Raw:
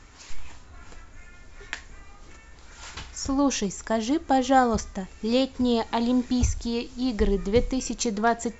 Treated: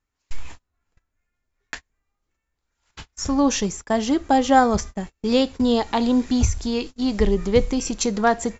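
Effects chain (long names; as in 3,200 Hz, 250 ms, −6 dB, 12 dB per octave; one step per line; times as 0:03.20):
noise gate −35 dBFS, range −35 dB
level +4 dB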